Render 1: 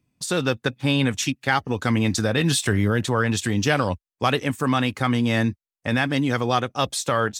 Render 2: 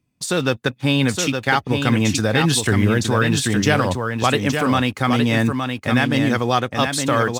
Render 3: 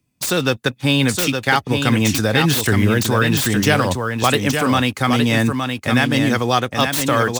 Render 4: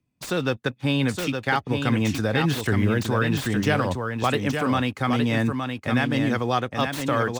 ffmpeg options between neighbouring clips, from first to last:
-filter_complex "[0:a]asplit=2[a][b];[b]acrusher=bits=5:mix=0:aa=0.5,volume=-8dB[c];[a][c]amix=inputs=2:normalize=0,aecho=1:1:866:0.531"
-filter_complex "[0:a]highshelf=f=4.4k:g=7,acrossover=split=350|3600[a][b][c];[c]aeval=exprs='(mod(7.08*val(0)+1,2)-1)/7.08':c=same[d];[a][b][d]amix=inputs=3:normalize=0,volume=1dB"
-af "highshelf=f=4.1k:g=-11.5,volume=-5.5dB"

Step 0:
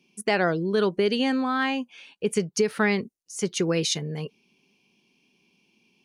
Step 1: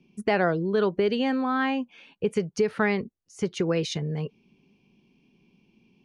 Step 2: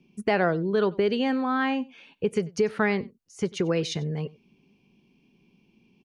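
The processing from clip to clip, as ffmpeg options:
-filter_complex "[0:a]aemphasis=mode=reproduction:type=riaa,acrossover=split=430[a][b];[a]acompressor=threshold=-30dB:ratio=4[c];[c][b]amix=inputs=2:normalize=0"
-af "aecho=1:1:94:0.0708"

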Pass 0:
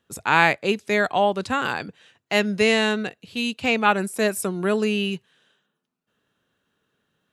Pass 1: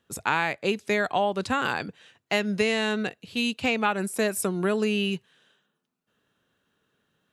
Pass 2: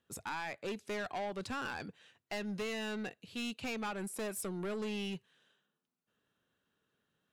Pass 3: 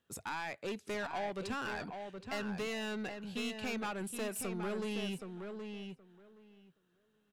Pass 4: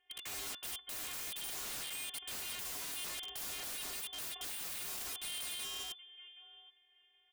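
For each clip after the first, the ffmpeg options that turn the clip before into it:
-af "acompressor=threshold=-20dB:ratio=6"
-af "asoftclip=type=tanh:threshold=-25.5dB,volume=-8.5dB"
-filter_complex "[0:a]asplit=2[a][b];[b]adelay=772,lowpass=f=2.7k:p=1,volume=-6dB,asplit=2[c][d];[d]adelay=772,lowpass=f=2.7k:p=1,volume=0.16,asplit=2[e][f];[f]adelay=772,lowpass=f=2.7k:p=1,volume=0.16[g];[a][c][e][g]amix=inputs=4:normalize=0"
-af "afftfilt=real='hypot(re,im)*cos(PI*b)':imag='0':win_size=512:overlap=0.75,lowpass=f=3k:t=q:w=0.5098,lowpass=f=3k:t=q:w=0.6013,lowpass=f=3k:t=q:w=0.9,lowpass=f=3k:t=q:w=2.563,afreqshift=-3500,aeval=exprs='(mod(200*val(0)+1,2)-1)/200':c=same,volume=8.5dB"

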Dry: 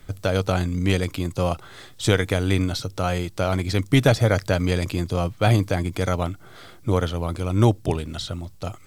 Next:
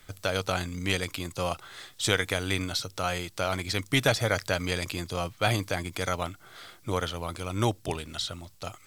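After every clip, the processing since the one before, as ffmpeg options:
-af "tiltshelf=f=670:g=-6,volume=-5.5dB"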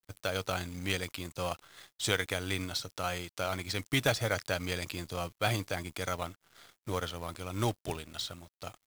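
-af "aeval=exprs='0.473*(cos(1*acos(clip(val(0)/0.473,-1,1)))-cos(1*PI/2))+0.0168*(cos(6*acos(clip(val(0)/0.473,-1,1)))-cos(6*PI/2))':c=same,acrusher=bits=4:mode=log:mix=0:aa=0.000001,aeval=exprs='sgn(val(0))*max(abs(val(0))-0.00398,0)':c=same,volume=-4dB"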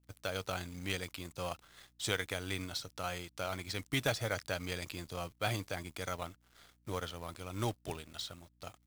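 -af "aeval=exprs='val(0)+0.000562*(sin(2*PI*60*n/s)+sin(2*PI*2*60*n/s)/2+sin(2*PI*3*60*n/s)/3+sin(2*PI*4*60*n/s)/4+sin(2*PI*5*60*n/s)/5)':c=same,volume=-4.5dB"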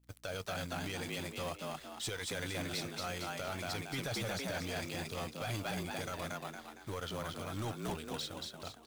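-filter_complex "[0:a]asplit=2[a][b];[b]asplit=5[c][d][e][f][g];[c]adelay=230,afreqshift=69,volume=-4dB[h];[d]adelay=460,afreqshift=138,volume=-11.5dB[i];[e]adelay=690,afreqshift=207,volume=-19.1dB[j];[f]adelay=920,afreqshift=276,volume=-26.6dB[k];[g]adelay=1150,afreqshift=345,volume=-34.1dB[l];[h][i][j][k][l]amix=inputs=5:normalize=0[m];[a][m]amix=inputs=2:normalize=0,alimiter=level_in=3dB:limit=-24dB:level=0:latency=1:release=10,volume=-3dB,volume=34dB,asoftclip=hard,volume=-34dB,volume=1dB"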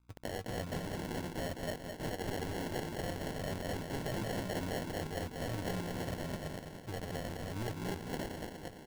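-filter_complex "[0:a]acrossover=split=670[a][b];[b]acrusher=bits=6:mix=0:aa=0.000001[c];[a][c]amix=inputs=2:normalize=0,aecho=1:1:209|418|627|836|1045|1254|1463:0.447|0.255|0.145|0.0827|0.0472|0.0269|0.0153,acrusher=samples=36:mix=1:aa=0.000001"

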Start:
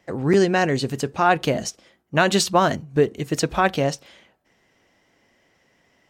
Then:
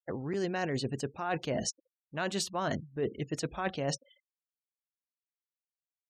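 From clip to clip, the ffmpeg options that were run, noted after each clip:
-af "afftfilt=real='re*gte(hypot(re,im),0.0141)':imag='im*gte(hypot(re,im),0.0141)':win_size=1024:overlap=0.75,areverse,acompressor=threshold=-26dB:ratio=20,areverse,volume=-3dB"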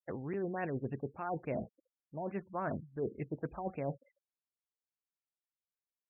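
-af "afftfilt=real='re*lt(b*sr/1024,900*pow(2800/900,0.5+0.5*sin(2*PI*3.5*pts/sr)))':imag='im*lt(b*sr/1024,900*pow(2800/900,0.5+0.5*sin(2*PI*3.5*pts/sr)))':win_size=1024:overlap=0.75,volume=-4dB"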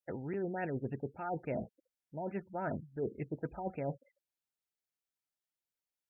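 -af "asuperstop=centerf=1100:order=12:qfactor=5.4"

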